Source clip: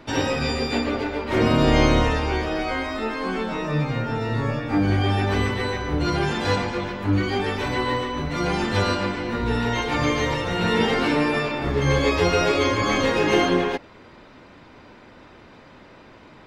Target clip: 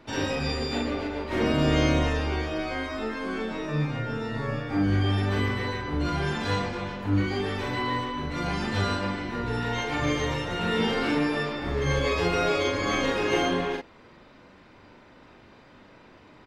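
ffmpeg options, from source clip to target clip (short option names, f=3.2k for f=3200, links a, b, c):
-filter_complex "[0:a]asplit=2[a][b];[b]adelay=41,volume=-2.5dB[c];[a][c]amix=inputs=2:normalize=0,volume=-7dB"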